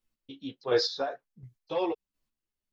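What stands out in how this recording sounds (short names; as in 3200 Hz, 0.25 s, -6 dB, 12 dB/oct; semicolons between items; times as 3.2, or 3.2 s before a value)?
chopped level 1.4 Hz, depth 60%, duty 20%; a shimmering, thickened sound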